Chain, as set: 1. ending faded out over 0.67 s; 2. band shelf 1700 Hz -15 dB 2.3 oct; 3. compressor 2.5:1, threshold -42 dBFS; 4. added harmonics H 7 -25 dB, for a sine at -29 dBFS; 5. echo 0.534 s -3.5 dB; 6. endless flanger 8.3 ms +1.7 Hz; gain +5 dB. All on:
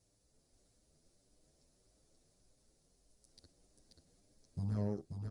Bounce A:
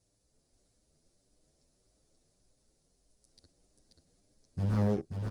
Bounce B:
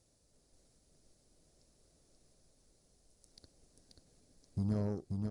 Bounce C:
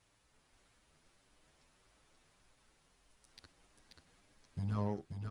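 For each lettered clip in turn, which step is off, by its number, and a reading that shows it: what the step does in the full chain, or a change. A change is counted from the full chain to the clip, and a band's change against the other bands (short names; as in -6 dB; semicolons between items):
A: 3, mean gain reduction 7.5 dB; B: 6, loudness change +2.5 LU; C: 2, 1 kHz band +9.0 dB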